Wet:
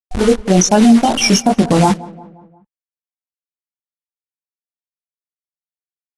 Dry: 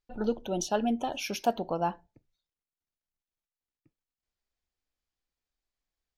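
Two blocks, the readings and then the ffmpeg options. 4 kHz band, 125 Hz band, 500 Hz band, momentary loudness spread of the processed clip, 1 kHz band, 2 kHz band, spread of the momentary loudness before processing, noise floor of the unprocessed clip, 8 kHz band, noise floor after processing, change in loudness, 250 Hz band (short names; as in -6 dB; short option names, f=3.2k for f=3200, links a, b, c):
+20.5 dB, +24.5 dB, +15.5 dB, 6 LU, +15.0 dB, +18.5 dB, 4 LU, under -85 dBFS, +22.0 dB, under -85 dBFS, +19.0 dB, +21.5 dB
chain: -filter_complex "[0:a]aemphasis=mode=production:type=50fm,bandreject=f=2.6k:w=15,afftfilt=real='re*gte(hypot(re,im),0.0501)':imag='im*gte(hypot(re,im),0.0501)':win_size=1024:overlap=0.75,asubboost=boost=11:cutoff=210,acrusher=bits=7:dc=4:mix=0:aa=0.000001,flanger=delay=19:depth=2.8:speed=2.5,asplit=2[a][b];[b]adelay=177,lowpass=f=1.8k:p=1,volume=-21.5dB,asplit=2[c][d];[d]adelay=177,lowpass=f=1.8k:p=1,volume=0.55,asplit=2[e][f];[f]adelay=177,lowpass=f=1.8k:p=1,volume=0.55,asplit=2[g][h];[h]adelay=177,lowpass=f=1.8k:p=1,volume=0.55[i];[a][c][e][g][i]amix=inputs=5:normalize=0,alimiter=level_in=24dB:limit=-1dB:release=50:level=0:latency=1,volume=-1dB" -ar 24000 -c:a aac -b:a 48k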